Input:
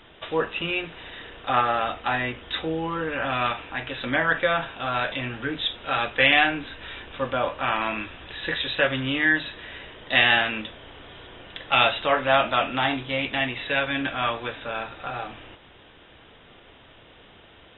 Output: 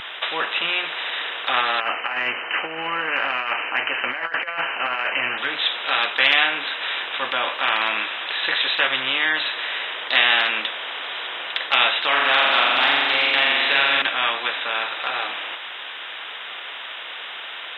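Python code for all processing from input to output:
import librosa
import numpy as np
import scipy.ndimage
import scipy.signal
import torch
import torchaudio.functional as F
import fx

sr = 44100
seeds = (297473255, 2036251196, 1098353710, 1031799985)

y = fx.chain(x, sr, fx.brickwall_lowpass(high_hz=3100.0),
    fx.over_compress(threshold_db=-28.0, ratio=-0.5), at=(1.8, 5.38))
y = fx.chain(y, sr, fx.room_flutter(wall_m=7.3, rt60_s=1.2),
    fx.band_squash(depth_pct=40), at=(12.08, 14.02))
y = scipy.signal.sosfilt(scipy.signal.butter(2, 1200.0, 'highpass', fs=sr, output='sos'), y)
y = fx.spectral_comp(y, sr, ratio=2.0)
y = y * 10.0 ** (3.5 / 20.0)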